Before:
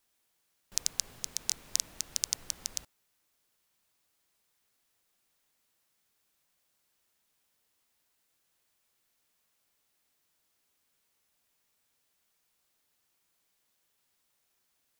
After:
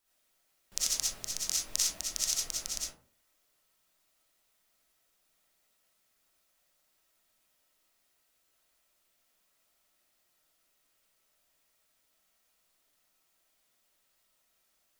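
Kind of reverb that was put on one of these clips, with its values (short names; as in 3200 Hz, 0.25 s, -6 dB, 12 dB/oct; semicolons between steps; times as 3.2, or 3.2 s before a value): digital reverb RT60 0.44 s, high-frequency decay 0.45×, pre-delay 20 ms, DRR -7 dB; gain -4.5 dB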